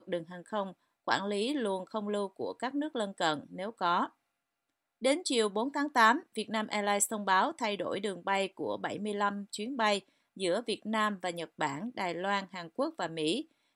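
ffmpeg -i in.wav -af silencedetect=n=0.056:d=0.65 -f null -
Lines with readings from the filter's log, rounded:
silence_start: 4.04
silence_end: 5.05 | silence_duration: 1.01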